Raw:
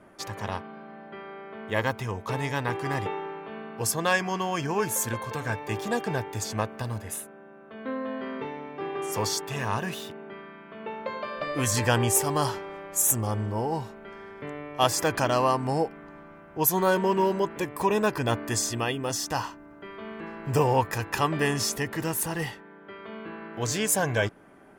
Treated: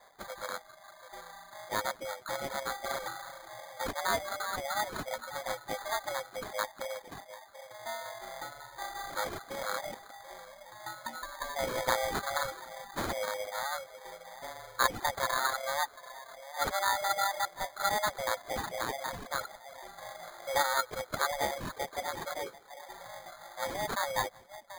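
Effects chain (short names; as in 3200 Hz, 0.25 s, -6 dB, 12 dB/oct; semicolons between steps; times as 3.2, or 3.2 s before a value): high shelf 6400 Hz -6.5 dB; split-band echo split 620 Hz, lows 0.736 s, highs 0.174 s, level -12.5 dB; frequency shift +410 Hz; sample-and-hold 16×; reverb removal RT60 0.92 s; gain -5.5 dB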